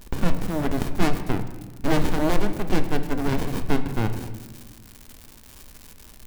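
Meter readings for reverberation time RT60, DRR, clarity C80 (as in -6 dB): 1.4 s, 8.0 dB, 12.0 dB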